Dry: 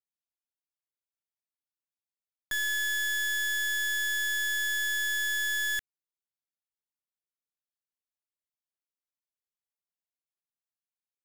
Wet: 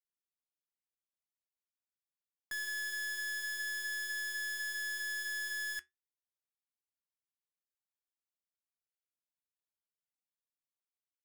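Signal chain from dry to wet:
stylus tracing distortion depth 0.12 ms
flanger 0.43 Hz, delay 4.2 ms, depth 2.7 ms, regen −77%
level −4.5 dB

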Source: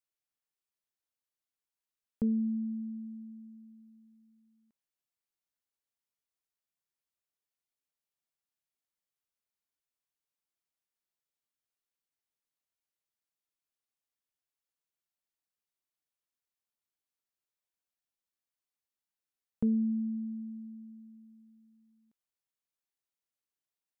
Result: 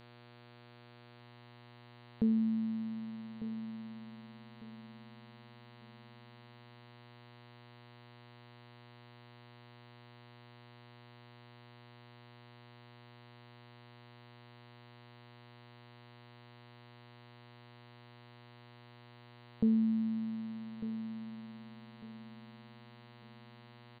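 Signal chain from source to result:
hum with harmonics 120 Hz, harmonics 38, −57 dBFS −4 dB per octave
on a send: repeating echo 1,199 ms, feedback 29%, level −12.5 dB

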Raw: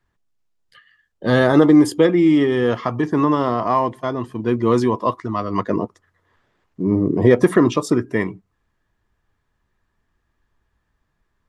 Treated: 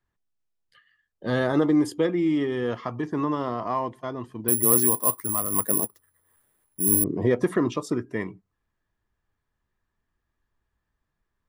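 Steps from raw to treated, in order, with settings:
0:04.48–0:07.04: bad sample-rate conversion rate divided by 4×, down none, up zero stuff
level −9 dB

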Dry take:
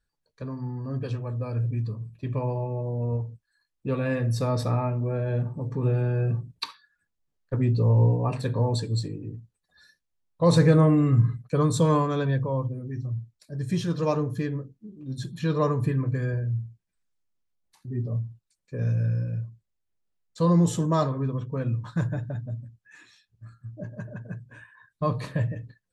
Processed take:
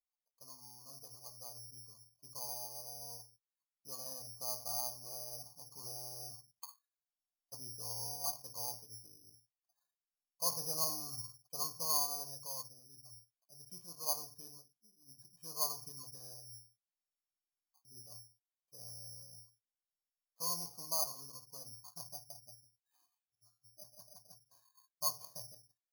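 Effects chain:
formant resonators in series a
bad sample-rate conversion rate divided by 8×, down none, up zero stuff
level −7.5 dB

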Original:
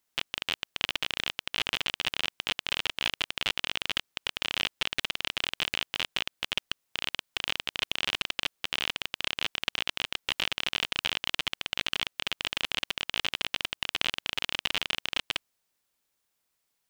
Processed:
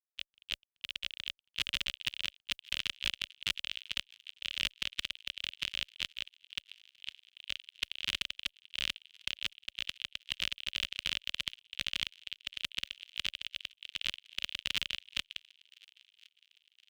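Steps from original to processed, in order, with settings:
in parallel at +2.5 dB: brickwall limiter −13.5 dBFS, peak gain reduction 8.5 dB
on the sum: noise gate −26 dBFS, range −42 dB
high-pass filter 55 Hz 6 dB per octave
guitar amp tone stack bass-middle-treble 6-0-2
notch filter 570 Hz, Q 12
on a send: delay with a high-pass on its return 1,064 ms, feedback 51%, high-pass 1,900 Hz, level −24 dB
on the sum: level +8.5 dB

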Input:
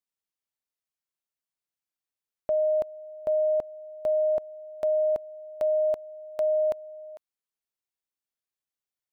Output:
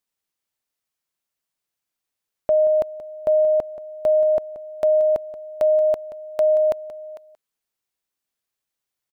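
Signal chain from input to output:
single-tap delay 179 ms −14.5 dB
level +7.5 dB

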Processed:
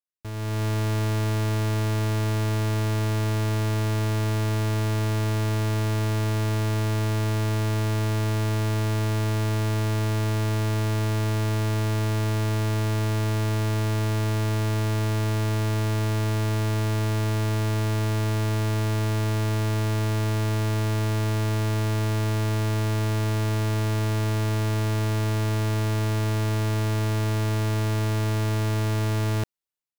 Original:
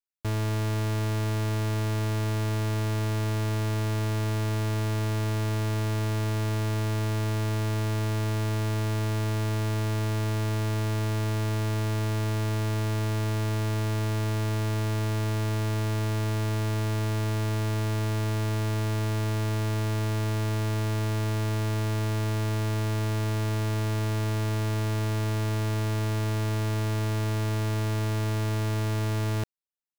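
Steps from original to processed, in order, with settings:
automatic gain control gain up to 10.5 dB
level −7.5 dB

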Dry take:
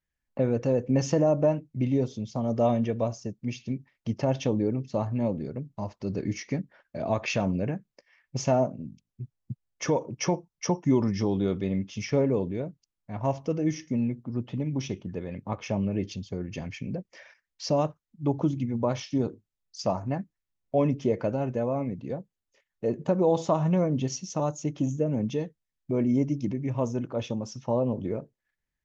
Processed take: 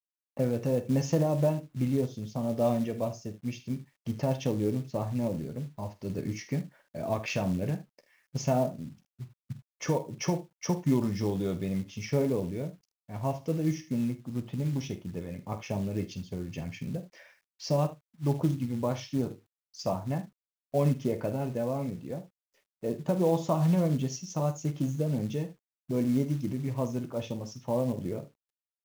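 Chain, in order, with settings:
ambience of single reflections 12 ms −10 dB, 48 ms −12.5 dB, 76 ms −16 dB
dynamic equaliser 140 Hz, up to +6 dB, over −43 dBFS, Q 2.6
log-companded quantiser 6 bits
level −4.5 dB

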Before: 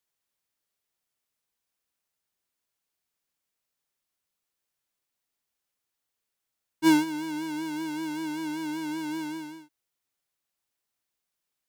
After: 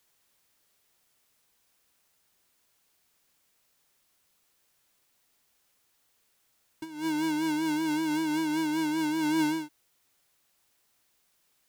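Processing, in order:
compressor whose output falls as the input rises −37 dBFS, ratio −1
level +7 dB

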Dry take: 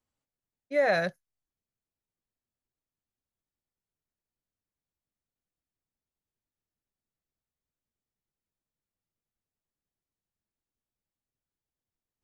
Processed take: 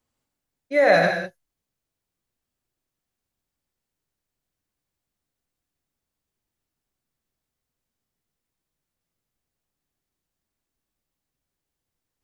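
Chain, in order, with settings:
reverb whose tail is shaped and stops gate 220 ms flat, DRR 2 dB
level +6.5 dB

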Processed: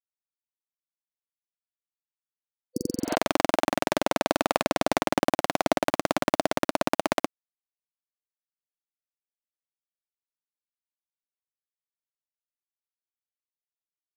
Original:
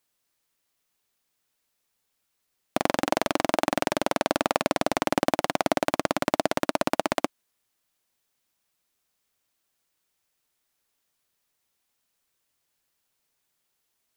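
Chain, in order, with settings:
centre clipping without the shift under −41.5 dBFS
healed spectral selection 0:02.48–0:03.12, 510–4,500 Hz both

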